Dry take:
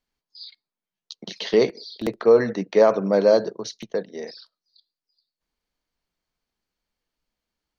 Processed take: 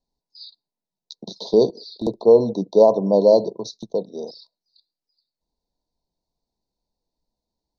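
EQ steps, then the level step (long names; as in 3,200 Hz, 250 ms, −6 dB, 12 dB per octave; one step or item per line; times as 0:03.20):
Chebyshev band-stop filter 1,000–3,700 Hz, order 5
high-frequency loss of the air 89 metres
+3.5 dB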